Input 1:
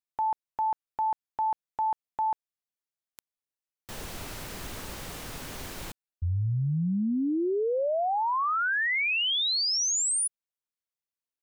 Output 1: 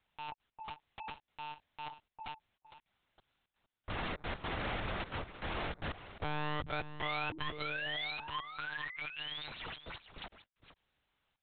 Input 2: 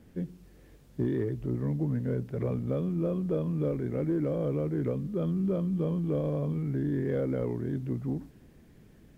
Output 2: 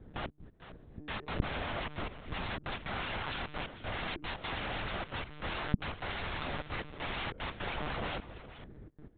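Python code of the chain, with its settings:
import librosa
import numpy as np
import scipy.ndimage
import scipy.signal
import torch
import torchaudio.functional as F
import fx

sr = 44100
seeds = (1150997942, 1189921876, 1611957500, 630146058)

p1 = fx.wiener(x, sr, points=15)
p2 = fx.low_shelf(p1, sr, hz=160.0, db=-2.5)
p3 = fx.rider(p2, sr, range_db=3, speed_s=0.5)
p4 = p2 + F.gain(torch.from_numpy(p3), 1.5).numpy()
p5 = fx.quant_dither(p4, sr, seeds[0], bits=12, dither='triangular')
p6 = 10.0 ** (-16.0 / 20.0) * np.tanh(p5 / 10.0 ** (-16.0 / 20.0))
p7 = fx.step_gate(p6, sr, bpm=152, pattern='xxx.x..xxx.x.xxx', floor_db=-24.0, edge_ms=4.5)
p8 = (np.mod(10.0 ** (30.0 / 20.0) * p7 + 1.0, 2.0) - 1.0) / 10.0 ** (30.0 / 20.0)
p9 = p8 + fx.echo_single(p8, sr, ms=455, db=-13.5, dry=0)
p10 = fx.lpc_monotone(p9, sr, seeds[1], pitch_hz=150.0, order=10)
y = F.gain(torch.from_numpy(p10), -1.5).numpy()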